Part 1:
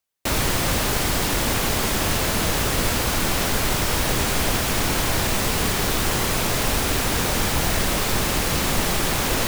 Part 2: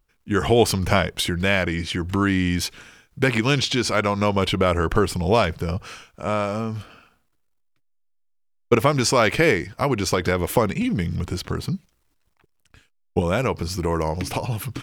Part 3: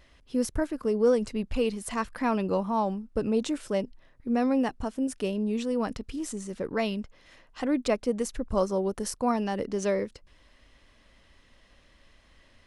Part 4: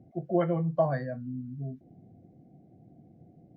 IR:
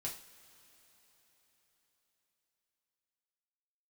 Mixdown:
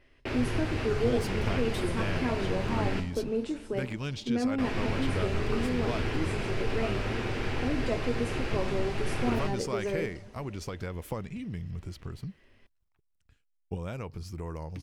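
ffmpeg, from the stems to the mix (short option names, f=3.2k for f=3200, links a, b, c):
-filter_complex "[0:a]lowpass=4.5k,volume=-12dB,asplit=3[a][b][c];[a]atrim=end=3,asetpts=PTS-STARTPTS,afade=t=out:st=2.996:d=0.004:c=hsin[d];[b]atrim=start=3:end=4.58,asetpts=PTS-STARTPTS,volume=0[e];[c]atrim=start=4.58,asetpts=PTS-STARTPTS,afade=t=in:d=0.004:c=hsin[f];[d][e][f]concat=n=3:v=0:a=1,asplit=2[g][h];[h]volume=-3.5dB[i];[1:a]adelay=550,volume=-18.5dB[j];[2:a]volume=-6dB,asplit=2[k][l];[l]volume=-4dB[m];[3:a]adelay=1500,volume=-8dB[n];[g][k][n]amix=inputs=3:normalize=0,highpass=260,equalizer=f=380:t=q:w=4:g=10,equalizer=f=690:t=q:w=4:g=-7,equalizer=f=1.1k:t=q:w=4:g=-9,equalizer=f=2.6k:t=q:w=4:g=4,equalizer=f=4.1k:t=q:w=4:g=-9,lowpass=f=5.7k:w=0.5412,lowpass=f=5.7k:w=1.3066,acompressor=threshold=-33dB:ratio=6,volume=0dB[o];[4:a]atrim=start_sample=2205[p];[i][m]amix=inputs=2:normalize=0[q];[q][p]afir=irnorm=-1:irlink=0[r];[j][o][r]amix=inputs=3:normalize=0,lowshelf=f=140:g=12"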